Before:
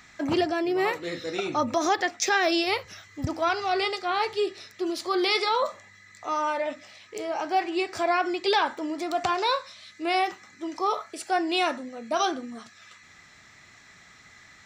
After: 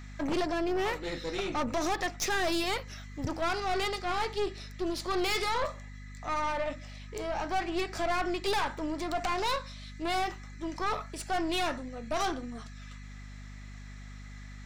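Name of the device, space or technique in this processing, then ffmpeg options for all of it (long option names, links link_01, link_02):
valve amplifier with mains hum: -af "aeval=exprs='(tanh(20*val(0)+0.6)-tanh(0.6))/20':channel_layout=same,aeval=exprs='val(0)+0.00631*(sin(2*PI*50*n/s)+sin(2*PI*2*50*n/s)/2+sin(2*PI*3*50*n/s)/3+sin(2*PI*4*50*n/s)/4+sin(2*PI*5*50*n/s)/5)':channel_layout=same"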